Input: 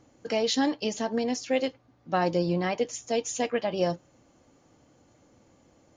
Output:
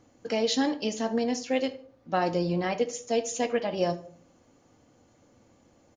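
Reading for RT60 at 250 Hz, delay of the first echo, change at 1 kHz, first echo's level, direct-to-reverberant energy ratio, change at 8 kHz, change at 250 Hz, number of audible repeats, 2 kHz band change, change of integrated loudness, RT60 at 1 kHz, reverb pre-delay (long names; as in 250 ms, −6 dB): 0.55 s, 74 ms, −0.5 dB, −19.5 dB, 9.5 dB, −0.5 dB, 0.0 dB, 2, −1.0 dB, 0.0 dB, 0.45 s, 4 ms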